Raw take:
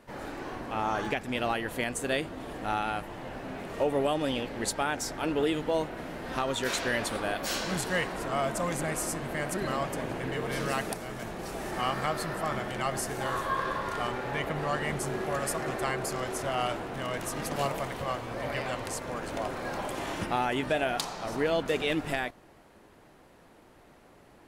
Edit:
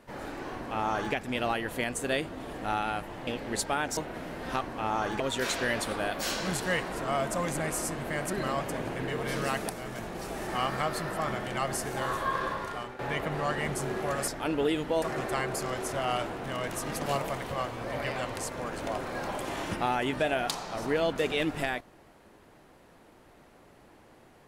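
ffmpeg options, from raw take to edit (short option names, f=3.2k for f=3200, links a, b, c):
-filter_complex "[0:a]asplit=8[a][b][c][d][e][f][g][h];[a]atrim=end=3.272[i];[b]atrim=start=4.358:end=5.062[j];[c]atrim=start=5.798:end=6.442[k];[d]atrim=start=0.538:end=1.132[l];[e]atrim=start=6.438:end=14.23,asetpts=PTS-STARTPTS,afade=t=out:st=7.272:d=0.52:silence=0.251189[m];[f]atrim=start=14.23:end=15.522,asetpts=PTS-STARTPTS,afade=t=in:d=0.004:c=hsin:silence=0.251189[n];[g]atrim=start=5.058:end=5.802[o];[h]atrim=start=15.518[p];[i][j]acrossfade=d=0.004:c1=hsin:c2=hsin[q];[q][k]acrossfade=d=0.004:c1=hsin:c2=hsin[r];[r][l]acrossfade=d=0.004:c1=hsin:c2=hsin[s];[m][n]concat=n=2:v=0:a=1[t];[s][t]acrossfade=d=0.004:c1=hsin:c2=hsin[u];[u][o]acrossfade=d=0.004:c1=hsin:c2=hsin[v];[v][p]acrossfade=d=0.004:c1=hsin:c2=hsin"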